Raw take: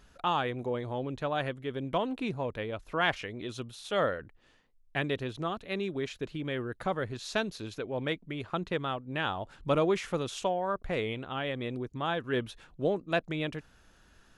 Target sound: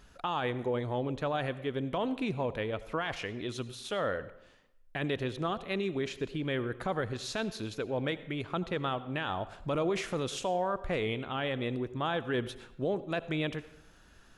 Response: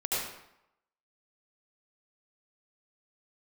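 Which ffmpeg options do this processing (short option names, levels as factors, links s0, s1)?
-filter_complex "[0:a]alimiter=level_in=1.06:limit=0.0631:level=0:latency=1:release=24,volume=0.944,asplit=2[s0][s1];[1:a]atrim=start_sample=2205[s2];[s1][s2]afir=irnorm=-1:irlink=0,volume=0.0841[s3];[s0][s3]amix=inputs=2:normalize=0,volume=1.12"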